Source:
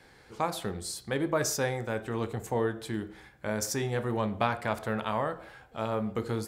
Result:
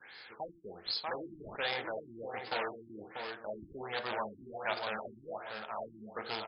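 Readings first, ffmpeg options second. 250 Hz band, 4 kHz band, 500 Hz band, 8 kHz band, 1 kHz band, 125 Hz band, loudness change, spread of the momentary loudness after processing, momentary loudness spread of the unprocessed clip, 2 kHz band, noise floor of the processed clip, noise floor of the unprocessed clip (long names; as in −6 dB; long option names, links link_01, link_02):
−15.0 dB, +0.5 dB, −9.0 dB, below −40 dB, −6.0 dB, −21.0 dB, −8.0 dB, 10 LU, 8 LU, −3.0 dB, −57 dBFS, −57 dBFS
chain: -filter_complex "[0:a]asplit=2[link_01][link_02];[link_02]aeval=exprs='(mod(16.8*val(0)+1,2)-1)/16.8':channel_layout=same,volume=-5dB[link_03];[link_01][link_03]amix=inputs=2:normalize=0,aderivative,asplit=2[link_04][link_05];[link_05]adelay=639,lowpass=frequency=2100:poles=1,volume=-5dB,asplit=2[link_06][link_07];[link_07]adelay=639,lowpass=frequency=2100:poles=1,volume=0.34,asplit=2[link_08][link_09];[link_09]adelay=639,lowpass=frequency=2100:poles=1,volume=0.34,asplit=2[link_10][link_11];[link_11]adelay=639,lowpass=frequency=2100:poles=1,volume=0.34[link_12];[link_04][link_06][link_08][link_10][link_12]amix=inputs=5:normalize=0,acrossover=split=5200[link_13][link_14];[link_13]acompressor=mode=upward:threshold=-54dB:ratio=2.5[link_15];[link_15][link_14]amix=inputs=2:normalize=0,adynamicequalizer=threshold=0.00112:dfrequency=700:dqfactor=1.4:tfrequency=700:tqfactor=1.4:attack=5:release=100:ratio=0.375:range=3:mode=boostabove:tftype=bell,asoftclip=type=hard:threshold=-28dB,afftfilt=real='re*lt(b*sr/1024,350*pow(5300/350,0.5+0.5*sin(2*PI*1.3*pts/sr)))':imag='im*lt(b*sr/1024,350*pow(5300/350,0.5+0.5*sin(2*PI*1.3*pts/sr)))':win_size=1024:overlap=0.75,volume=9.5dB"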